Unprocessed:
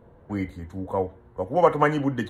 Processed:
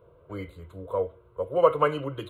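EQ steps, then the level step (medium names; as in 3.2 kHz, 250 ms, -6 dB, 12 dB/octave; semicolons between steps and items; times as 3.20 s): bass shelf 66 Hz -11.5 dB; static phaser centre 1.2 kHz, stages 8; 0.0 dB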